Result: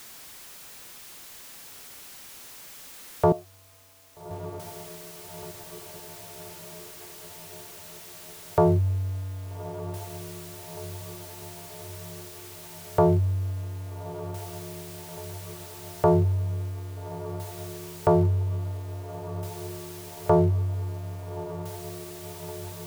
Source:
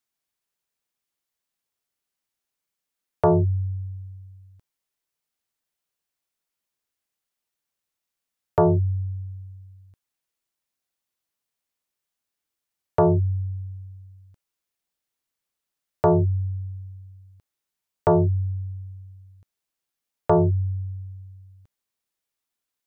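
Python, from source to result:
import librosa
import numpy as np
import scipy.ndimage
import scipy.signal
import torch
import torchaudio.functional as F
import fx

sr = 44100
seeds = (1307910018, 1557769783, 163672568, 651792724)

y = x + 0.5 * 10.0 ** (-36.5 / 20.0) * np.sign(x)
y = fx.vowel_filter(y, sr, vowel='a', at=(3.32, 4.31))
y = fx.echo_diffused(y, sr, ms=1261, feedback_pct=68, wet_db=-13.0)
y = F.gain(torch.from_numpy(y), -2.0).numpy()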